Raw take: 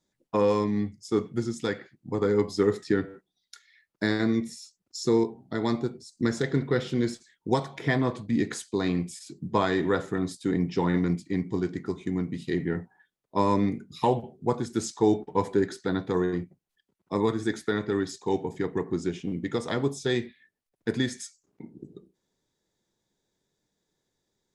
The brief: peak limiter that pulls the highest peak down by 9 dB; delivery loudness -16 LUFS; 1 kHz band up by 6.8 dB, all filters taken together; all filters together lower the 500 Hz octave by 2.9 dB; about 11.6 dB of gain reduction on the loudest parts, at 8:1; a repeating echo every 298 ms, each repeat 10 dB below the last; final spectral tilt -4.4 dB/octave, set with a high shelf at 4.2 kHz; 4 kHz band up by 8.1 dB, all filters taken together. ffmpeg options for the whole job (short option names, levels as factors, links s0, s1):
-af "equalizer=f=500:t=o:g=-5.5,equalizer=f=1000:t=o:g=8.5,equalizer=f=4000:t=o:g=7.5,highshelf=f=4200:g=3.5,acompressor=threshold=0.0447:ratio=8,alimiter=limit=0.075:level=0:latency=1,aecho=1:1:298|596|894|1192:0.316|0.101|0.0324|0.0104,volume=8.41"